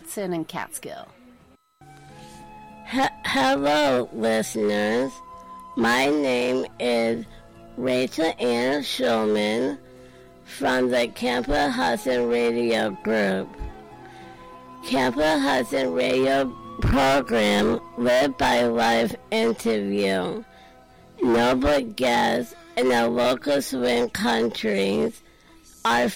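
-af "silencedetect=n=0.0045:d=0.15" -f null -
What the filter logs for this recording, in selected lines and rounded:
silence_start: 1.55
silence_end: 1.81 | silence_duration: 0.26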